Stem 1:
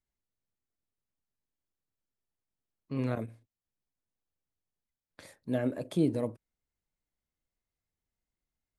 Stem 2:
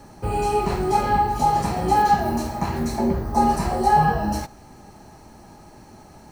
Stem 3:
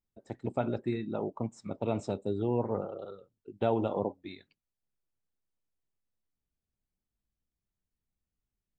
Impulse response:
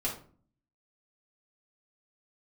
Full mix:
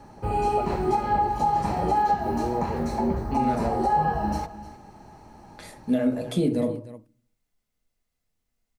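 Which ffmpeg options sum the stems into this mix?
-filter_complex "[0:a]highshelf=f=4100:g=12,adelay=400,volume=1.26,asplit=3[s0][s1][s2];[s1]volume=0.668[s3];[s2]volume=0.224[s4];[1:a]equalizer=f=870:w=5.7:g=4.5,volume=0.708,asplit=2[s5][s6];[s6]volume=0.168[s7];[2:a]highpass=240,lowpass=1100,volume=1.19[s8];[3:a]atrim=start_sample=2205[s9];[s3][s9]afir=irnorm=-1:irlink=0[s10];[s4][s7]amix=inputs=2:normalize=0,aecho=0:1:305:1[s11];[s0][s5][s8][s10][s11]amix=inputs=5:normalize=0,highshelf=f=5300:g=-10,alimiter=limit=0.2:level=0:latency=1:release=270"

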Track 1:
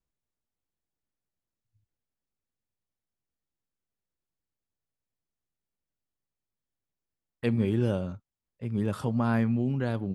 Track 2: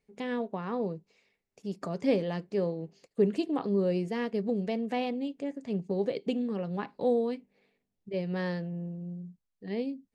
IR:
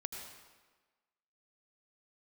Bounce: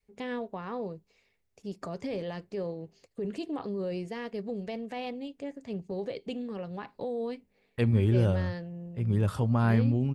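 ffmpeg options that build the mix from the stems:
-filter_complex "[0:a]adelay=350,volume=1[s0];[1:a]adynamicequalizer=threshold=0.00891:dfrequency=280:dqfactor=0.7:tfrequency=280:tqfactor=0.7:attack=5:release=100:ratio=0.375:range=2:mode=cutabove:tftype=bell,alimiter=level_in=1.12:limit=0.0631:level=0:latency=1:release=14,volume=0.891,volume=0.944[s1];[s0][s1]amix=inputs=2:normalize=0,lowshelf=f=120:t=q:w=1.5:g=7.5"

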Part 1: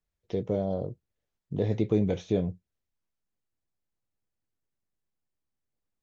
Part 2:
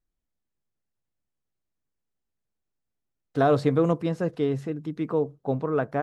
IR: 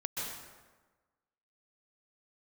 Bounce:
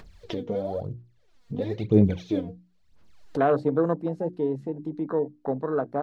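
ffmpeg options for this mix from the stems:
-filter_complex "[0:a]lowpass=5500,aphaser=in_gain=1:out_gain=1:delay=4.3:decay=0.74:speed=1:type=sinusoidal,volume=0.708[s0];[1:a]afwtdn=0.0316,highpass=180,volume=0.944[s1];[s0][s1]amix=inputs=2:normalize=0,acompressor=mode=upward:threshold=0.0562:ratio=2.5,equalizer=f=4300:t=o:w=0.31:g=4,bandreject=f=60:t=h:w=6,bandreject=f=120:t=h:w=6,bandreject=f=180:t=h:w=6,bandreject=f=240:t=h:w=6,bandreject=f=300:t=h:w=6,bandreject=f=360:t=h:w=6"

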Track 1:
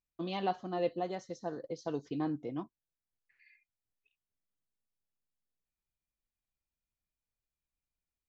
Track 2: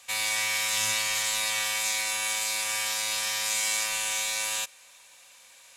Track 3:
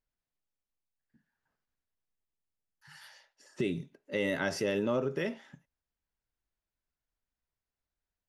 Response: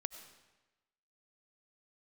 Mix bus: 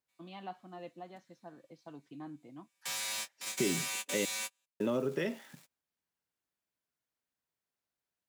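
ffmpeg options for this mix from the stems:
-filter_complex "[0:a]lowpass=3600,equalizer=f=450:w=2.5:g=-12,volume=0.376[s0];[1:a]asoftclip=type=tanh:threshold=0.0299,aeval=exprs='val(0)*gte(abs(val(0)),0.00376)':c=same,volume=0.708[s1];[2:a]volume=1.06,asplit=3[s2][s3][s4];[s2]atrim=end=4.25,asetpts=PTS-STARTPTS,afade=t=out:st=4.246:d=0.004:c=hsin[s5];[s3]atrim=start=4.25:end=4.8,asetpts=PTS-STARTPTS,volume=0[s6];[s4]atrim=start=4.8,asetpts=PTS-STARTPTS,afade=t=in:d=0.004:c=hsin[s7];[s5][s6][s7]concat=n=3:v=0:a=1,asplit=2[s8][s9];[s9]apad=whole_len=254429[s10];[s1][s10]sidechaingate=range=0.00631:threshold=0.00112:ratio=16:detection=peak[s11];[s0][s11][s8]amix=inputs=3:normalize=0,highpass=150,acrossover=split=420|3000[s12][s13][s14];[s13]acompressor=threshold=0.0178:ratio=6[s15];[s12][s15][s14]amix=inputs=3:normalize=0"

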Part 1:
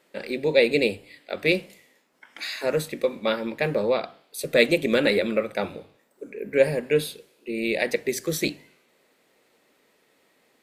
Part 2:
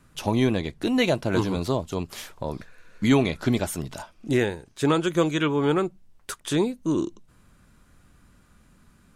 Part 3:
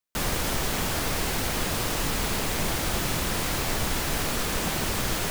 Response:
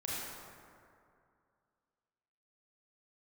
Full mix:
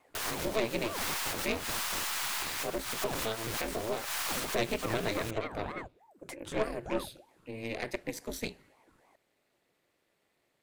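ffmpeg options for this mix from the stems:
-filter_complex "[0:a]aeval=exprs='val(0)*sin(2*PI*110*n/s)':c=same,volume=0.562,asplit=2[s0][s1];[1:a]equalizer=f=1200:t=o:w=0.37:g=11.5,acompressor=threshold=0.02:ratio=2,aeval=exprs='val(0)*sin(2*PI*520*n/s+520*0.8/3.3*sin(2*PI*3.3*n/s))':c=same,volume=0.631[s2];[2:a]highpass=f=870:w=0.5412,highpass=f=870:w=1.3066,volume=1[s3];[s1]apad=whole_len=234016[s4];[s3][s4]sidechaincompress=threshold=0.01:ratio=8:attack=22:release=137[s5];[s0][s2][s5]amix=inputs=3:normalize=0,aeval=exprs='(tanh(12.6*val(0)+0.7)-tanh(0.7))/12.6':c=same"

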